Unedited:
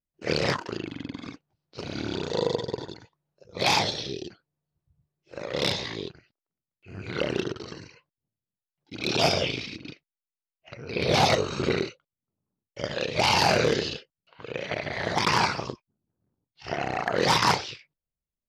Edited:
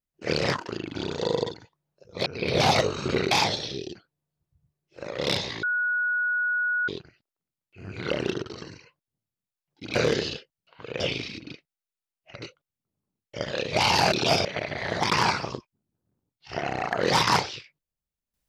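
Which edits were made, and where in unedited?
0.95–2.07 s: delete
2.63–2.91 s: delete
5.98 s: add tone 1.46 kHz -22.5 dBFS 1.25 s
9.05–9.38 s: swap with 13.55–14.60 s
10.80–11.85 s: move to 3.66 s

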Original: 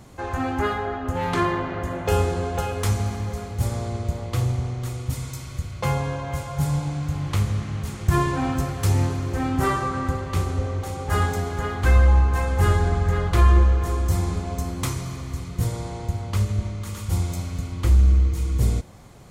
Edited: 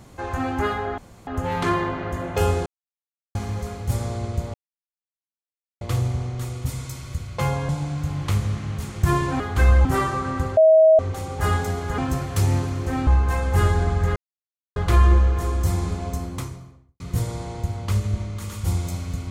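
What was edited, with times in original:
0.98 s: insert room tone 0.29 s
2.37–3.06 s: mute
4.25 s: insert silence 1.27 s
6.13–6.74 s: delete
8.45–9.54 s: swap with 11.67–12.12 s
10.26–10.68 s: bleep 637 Hz -9.5 dBFS
13.21 s: insert silence 0.60 s
14.46–15.45 s: studio fade out

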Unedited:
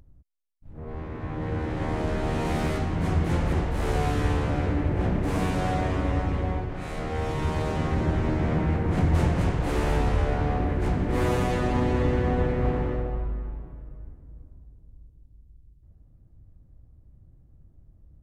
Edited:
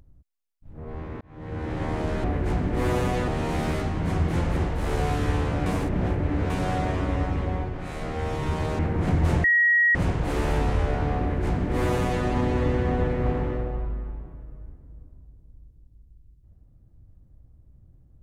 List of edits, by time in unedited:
1.21–1.73 s: fade in
4.62–5.46 s: reverse
7.75–8.69 s: delete
9.34 s: add tone 1.9 kHz -16 dBFS 0.51 s
10.60–11.64 s: copy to 2.24 s

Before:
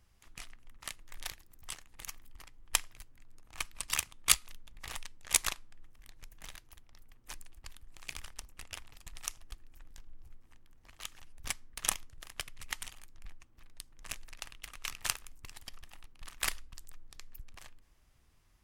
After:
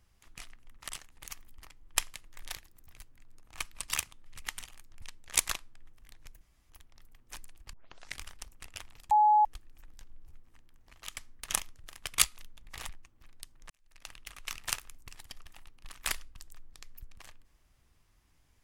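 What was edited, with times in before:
0.89–1.66 s: move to 2.91 s
4.26–4.99 s: swap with 12.50–13.26 s
6.38–6.67 s: room tone
7.70 s: tape start 0.46 s
9.08–9.42 s: bleep 846 Hz -19 dBFS
11.14–11.51 s: delete
14.07–14.49 s: fade in quadratic

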